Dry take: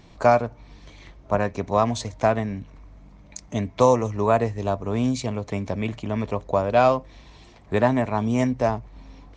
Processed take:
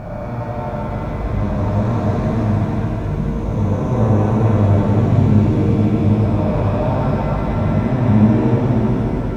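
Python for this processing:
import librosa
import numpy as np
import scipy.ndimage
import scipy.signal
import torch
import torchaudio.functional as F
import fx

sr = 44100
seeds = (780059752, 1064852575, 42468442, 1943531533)

y = fx.spec_blur(x, sr, span_ms=970.0)
y = np.where(np.abs(y) >= 10.0 ** (-48.5 / 20.0), y, 0.0)
y = fx.bass_treble(y, sr, bass_db=14, treble_db=-6)
y = fx.rev_shimmer(y, sr, seeds[0], rt60_s=3.6, semitones=7, shimmer_db=-8, drr_db=-4.5)
y = F.gain(torch.from_numpy(y), -1.5).numpy()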